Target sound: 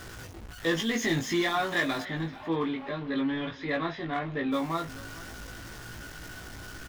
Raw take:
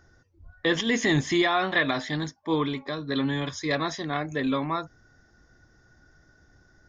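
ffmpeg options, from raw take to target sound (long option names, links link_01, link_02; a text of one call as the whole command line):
ffmpeg -i in.wav -filter_complex "[0:a]aeval=exprs='val(0)+0.5*0.0237*sgn(val(0))':channel_layout=same,asplit=3[link_01][link_02][link_03];[link_01]afade=type=out:start_time=2.02:duration=0.02[link_04];[link_02]lowpass=frequency=3300:width=0.5412,lowpass=frequency=3300:width=1.3066,afade=type=in:start_time=2.02:duration=0.02,afade=type=out:start_time=4.51:duration=0.02[link_05];[link_03]afade=type=in:start_time=4.51:duration=0.02[link_06];[link_04][link_05][link_06]amix=inputs=3:normalize=0,asoftclip=type=hard:threshold=-16.5dB,asplit=2[link_07][link_08];[link_08]adelay=18,volume=-3dB[link_09];[link_07][link_09]amix=inputs=2:normalize=0,aecho=1:1:434|868:0.1|0.029,volume=-6.5dB" out.wav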